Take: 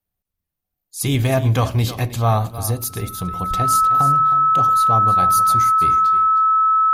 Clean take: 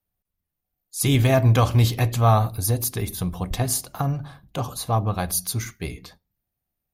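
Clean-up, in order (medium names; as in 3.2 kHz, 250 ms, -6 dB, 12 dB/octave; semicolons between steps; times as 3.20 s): band-stop 1.3 kHz, Q 30; inverse comb 314 ms -13.5 dB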